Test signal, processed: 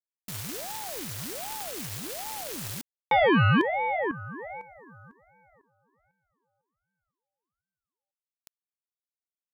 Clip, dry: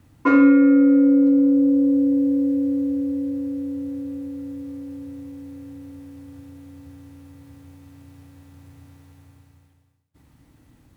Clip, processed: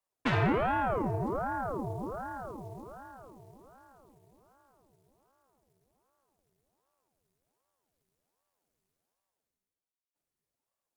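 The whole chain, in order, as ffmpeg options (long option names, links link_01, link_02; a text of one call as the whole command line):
ffmpeg -i in.wav -af "bass=frequency=250:gain=-13,treble=frequency=4000:gain=11,aeval=exprs='1*(cos(1*acos(clip(val(0)/1,-1,1)))-cos(1*PI/2))+0.355*(cos(3*acos(clip(val(0)/1,-1,1)))-cos(3*PI/2))+0.178*(cos(8*acos(clip(val(0)/1,-1,1)))-cos(8*PI/2))':channel_layout=same,aeval=exprs='val(0)*sin(2*PI*490*n/s+490*0.8/1.3*sin(2*PI*1.3*n/s))':channel_layout=same,volume=-5.5dB" out.wav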